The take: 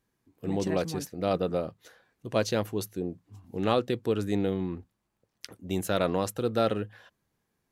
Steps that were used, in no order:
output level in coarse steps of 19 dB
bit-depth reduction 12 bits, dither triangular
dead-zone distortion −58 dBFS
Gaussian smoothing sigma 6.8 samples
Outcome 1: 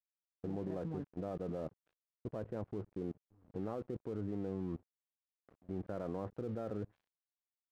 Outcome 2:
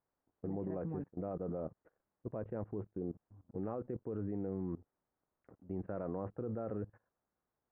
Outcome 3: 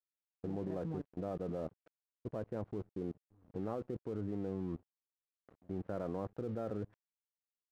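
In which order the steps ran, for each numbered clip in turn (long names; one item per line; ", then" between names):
bit-depth reduction, then output level in coarse steps, then Gaussian smoothing, then dead-zone distortion
dead-zone distortion, then bit-depth reduction, then output level in coarse steps, then Gaussian smoothing
bit-depth reduction, then Gaussian smoothing, then output level in coarse steps, then dead-zone distortion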